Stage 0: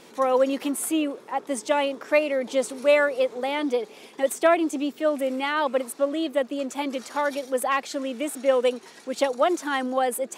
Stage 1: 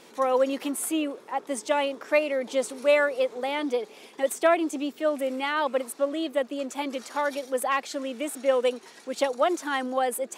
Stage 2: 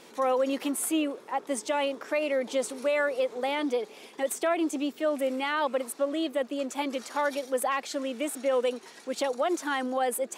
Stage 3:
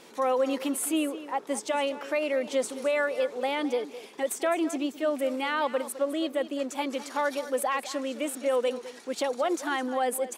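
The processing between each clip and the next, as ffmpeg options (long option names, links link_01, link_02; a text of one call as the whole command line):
ffmpeg -i in.wav -af "lowshelf=frequency=180:gain=-6,volume=-1.5dB" out.wav
ffmpeg -i in.wav -af "alimiter=limit=-18.5dB:level=0:latency=1:release=53" out.wav
ffmpeg -i in.wav -af "aecho=1:1:209:0.188" out.wav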